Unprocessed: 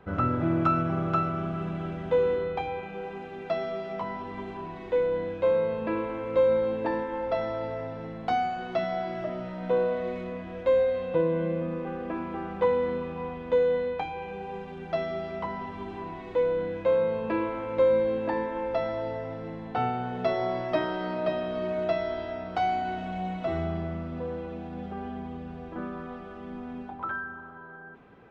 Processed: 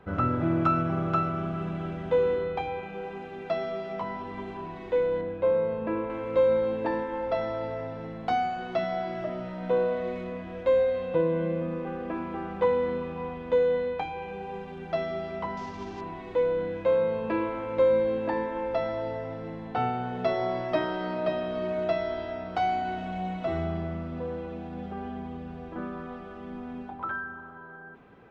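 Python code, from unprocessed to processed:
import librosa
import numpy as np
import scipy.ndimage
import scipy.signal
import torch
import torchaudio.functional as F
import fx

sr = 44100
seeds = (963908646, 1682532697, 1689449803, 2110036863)

y = fx.lowpass(x, sr, hz=1700.0, slope=6, at=(5.21, 6.1))
y = fx.cvsd(y, sr, bps=32000, at=(15.57, 16.01))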